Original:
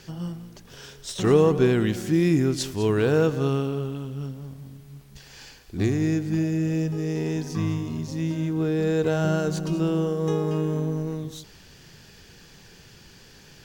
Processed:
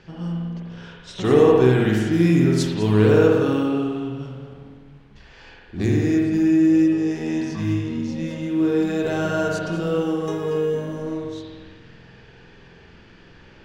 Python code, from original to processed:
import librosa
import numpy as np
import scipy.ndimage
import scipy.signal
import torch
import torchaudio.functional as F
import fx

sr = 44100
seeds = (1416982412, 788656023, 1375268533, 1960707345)

y = fx.env_lowpass(x, sr, base_hz=2500.0, full_db=-20.0)
y = fx.hum_notches(y, sr, base_hz=50, count=3)
y = fx.rev_spring(y, sr, rt60_s=1.4, pass_ms=(47,), chirp_ms=45, drr_db=-2.5)